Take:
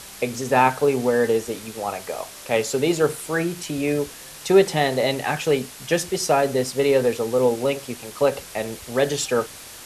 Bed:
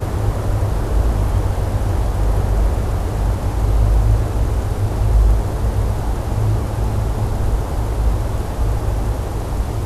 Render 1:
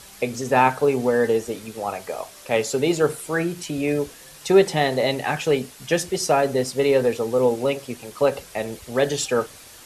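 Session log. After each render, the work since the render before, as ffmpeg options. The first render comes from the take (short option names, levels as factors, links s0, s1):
-af "afftdn=nr=6:nf=-41"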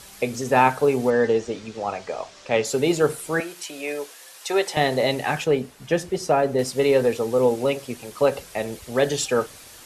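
-filter_complex "[0:a]asettb=1/sr,asplit=3[s0][s1][s2];[s0]atrim=end=1.104[s3];[s1]atrim=start=1.1:end=2.65,asetpts=PTS-STARTPTS,afade=t=in:d=0.004:c=qsin,afade=t=out:st=1.546:d=0.004:c=qsin,lowpass=f=6600:w=0.5412,lowpass=f=6600:w=1.3066[s4];[s2]atrim=start=2.646[s5];[s3][s4]acrossfade=d=0.004:c1=hsin:c2=qsin[s6];[s6][s5]acrossfade=d=0.004:c1=qsin:c2=hsin,asettb=1/sr,asplit=3[s7][s8][s9];[s7]atrim=end=3.404[s10];[s8]atrim=start=3.4:end=4.77,asetpts=PTS-STARTPTS,afade=t=in:d=0.004:c=qsin,afade=t=out:st=1.366:d=0.004:c=qsin,highpass=580[s11];[s9]atrim=start=4.766[s12];[s10][s11]acrossfade=d=0.004:c1=hsin:c2=qsin[s13];[s13][s12]acrossfade=d=0.004:c1=qsin:c2=hsin,asettb=1/sr,asplit=3[s14][s15][s16];[s14]atrim=end=5.444[s17];[s15]atrim=start=5.44:end=6.59,asetpts=PTS-STARTPTS,afade=t=in:d=0.004:c=qsin,afade=t=out:st=1.146:d=0.004:c=qsin,highshelf=f=2500:g=-9.5[s18];[s16]atrim=start=6.586[s19];[s17][s18]acrossfade=d=0.004:c1=hsin:c2=qsin[s20];[s20][s19]acrossfade=d=0.004:c1=qsin:c2=hsin"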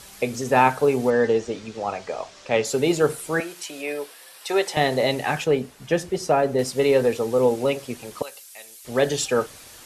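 -filter_complex "[0:a]asettb=1/sr,asplit=3[s0][s1][s2];[s0]atrim=end=3.824[s3];[s1]atrim=start=3.82:end=4.49,asetpts=PTS-STARTPTS,afade=t=in:d=0.004:c=qsin,afade=t=out:st=0.666:d=0.004:c=qsin,equalizer=f=6600:w=3.9:g=-9.5[s4];[s2]atrim=start=4.486[s5];[s3][s4]acrossfade=d=0.004:c1=hsin:c2=qsin[s6];[s6][s5]acrossfade=d=0.004:c1=qsin:c2=hsin,asettb=1/sr,asplit=3[s7][s8][s9];[s7]atrim=end=8.224[s10];[s8]atrim=start=8.22:end=8.85,asetpts=PTS-STARTPTS,afade=t=in:d=0.004:c=qsin,afade=t=out:st=0.626:d=0.004:c=qsin,aderivative[s11];[s9]atrim=start=8.846[s12];[s10][s11]acrossfade=d=0.004:c1=hsin:c2=qsin[s13];[s13][s12]acrossfade=d=0.004:c1=qsin:c2=hsin"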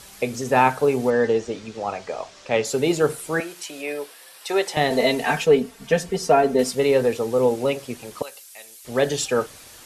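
-filter_complex "[0:a]asettb=1/sr,asplit=3[s0][s1][s2];[s0]atrim=end=4.904[s3];[s1]atrim=start=4.9:end=6.75,asetpts=PTS-STARTPTS,afade=t=in:d=0.004:c=qsin,afade=t=out:st=1.846:d=0.004:c=qsin,aecho=1:1:4.4:0.96,atrim=end_sample=81585[s4];[s2]atrim=start=6.746[s5];[s3][s4]acrossfade=d=0.004:c1=hsin:c2=qsin[s6];[s6][s5]acrossfade=d=0.004:c1=qsin:c2=hsin"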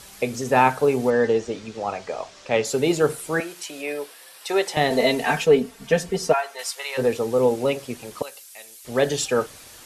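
-filter_complex "[0:a]asplit=3[s0][s1][s2];[s0]afade=t=out:st=6.32:d=0.02[s3];[s1]highpass=f=860:w=0.5412,highpass=f=860:w=1.3066,afade=t=in:st=6.32:d=0.02,afade=t=out:st=6.97:d=0.02[s4];[s2]afade=t=in:st=6.97:d=0.02[s5];[s3][s4][s5]amix=inputs=3:normalize=0"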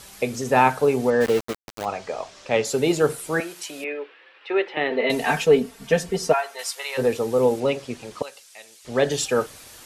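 -filter_complex "[0:a]asplit=3[s0][s1][s2];[s0]afade=t=out:st=1.2:d=0.02[s3];[s1]aeval=exprs='val(0)*gte(abs(val(0)),0.0531)':c=same,afade=t=in:st=1.2:d=0.02,afade=t=out:st=1.84:d=0.02[s4];[s2]afade=t=in:st=1.84:d=0.02[s5];[s3][s4][s5]amix=inputs=3:normalize=0,asettb=1/sr,asplit=3[s6][s7][s8];[s6]atrim=end=3.844[s9];[s7]atrim=start=3.84:end=5.1,asetpts=PTS-STARTPTS,afade=t=in:d=0.004:c=qsin,afade=t=out:st=1.256:d=0.004:c=qsin,highpass=340,equalizer=f=340:t=q:w=4:g=5,equalizer=f=680:t=q:w=4:g=-9,equalizer=f=1000:t=q:w=4:g=-4,equalizer=f=2600:t=q:w=4:g=3,lowpass=f=2800:w=0.5412,lowpass=f=2800:w=1.3066[s10];[s8]atrim=start=5.096[s11];[s9][s10]acrossfade=d=0.004:c1=hsin:c2=qsin[s12];[s12][s11]acrossfade=d=0.004:c1=qsin:c2=hsin,asettb=1/sr,asplit=3[s13][s14][s15];[s13]atrim=end=7.604[s16];[s14]atrim=start=7.6:end=9.11,asetpts=PTS-STARTPTS,afade=t=in:d=0.004:c=qsin,afade=t=out:st=1.506:d=0.004:c=qsin,lowpass=7300[s17];[s15]atrim=start=9.106[s18];[s16][s17]acrossfade=d=0.004:c1=hsin:c2=qsin[s19];[s19][s18]acrossfade=d=0.004:c1=qsin:c2=hsin"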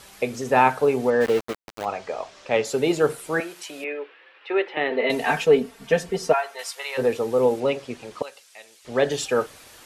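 -af "bass=f=250:g=-4,treble=f=4000:g=-5"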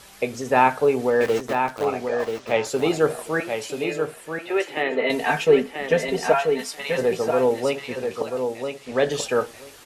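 -filter_complex "[0:a]asplit=2[s0][s1];[s1]adelay=19,volume=0.224[s2];[s0][s2]amix=inputs=2:normalize=0,aecho=1:1:985|1970|2955:0.501|0.0852|0.0145"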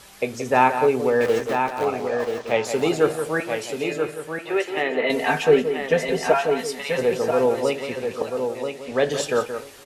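-filter_complex "[0:a]asplit=2[s0][s1];[s1]adelay=174.9,volume=0.355,highshelf=f=4000:g=-3.94[s2];[s0][s2]amix=inputs=2:normalize=0"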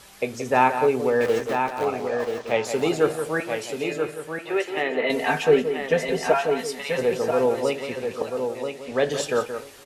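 -af "volume=0.841"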